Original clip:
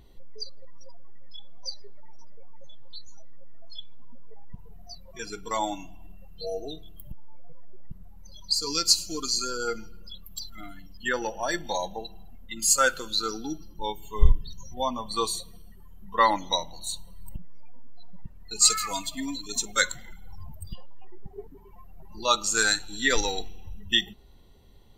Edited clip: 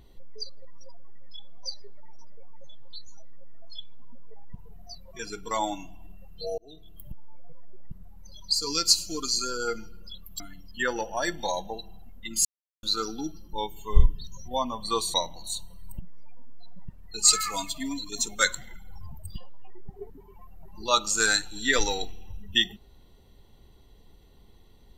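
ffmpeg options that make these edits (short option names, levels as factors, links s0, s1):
-filter_complex "[0:a]asplit=6[s0][s1][s2][s3][s4][s5];[s0]atrim=end=6.58,asetpts=PTS-STARTPTS,afade=t=out:st=6.576:d=0.004:c=hsin[s6];[s1]atrim=start=6.58:end=10.402,asetpts=PTS-STARTPTS,afade=t=in:d=0.46[s7];[s2]atrim=start=10.658:end=12.71,asetpts=PTS-STARTPTS,afade=t=out:st=2.048:d=0.004:c=hsin[s8];[s3]atrim=start=12.71:end=13.09,asetpts=PTS-STARTPTS,volume=0[s9];[s4]atrim=start=13.09:end=15.402,asetpts=PTS-STARTPTS,afade=t=in:d=0.004:c=hsin[s10];[s5]atrim=start=16.508[s11];[s6][s7]concat=n=2:v=0:a=1[s12];[s8][s9][s10]concat=n=3:v=0:a=1[s13];[s12][s13]acrossfade=d=0.004:c1=hsin:c2=hsin[s14];[s14][s11]acrossfade=d=0.004:c1=hsin:c2=hsin"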